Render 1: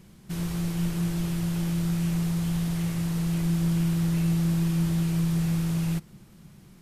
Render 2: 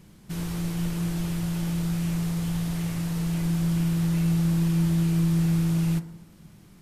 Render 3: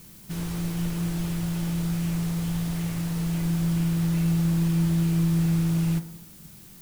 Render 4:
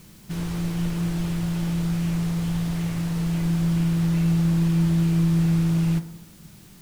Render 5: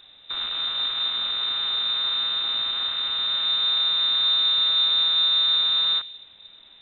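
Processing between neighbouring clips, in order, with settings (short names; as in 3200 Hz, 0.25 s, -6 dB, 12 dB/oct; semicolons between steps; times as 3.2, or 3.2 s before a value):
FDN reverb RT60 0.82 s, low-frequency decay 1×, high-frequency decay 0.4×, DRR 9 dB
added noise blue -50 dBFS
high shelf 8600 Hz -9.5 dB; gain +2.5 dB
rattling part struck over -32 dBFS, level -26 dBFS; HPF 63 Hz; inverted band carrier 3800 Hz; gain -1 dB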